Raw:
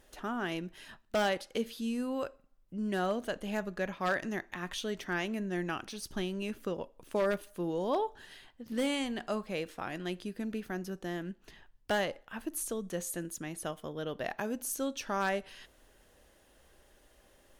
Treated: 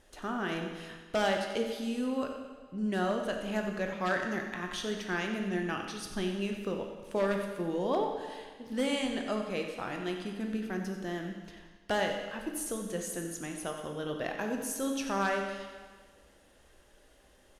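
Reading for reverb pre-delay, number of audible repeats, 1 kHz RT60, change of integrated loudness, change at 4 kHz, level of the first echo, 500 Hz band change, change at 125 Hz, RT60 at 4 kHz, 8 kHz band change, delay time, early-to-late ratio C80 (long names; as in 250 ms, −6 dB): 15 ms, 1, 1.5 s, +1.5 dB, +1.5 dB, −11.5 dB, +1.5 dB, +2.0 dB, 1.4 s, +0.5 dB, 91 ms, 5.5 dB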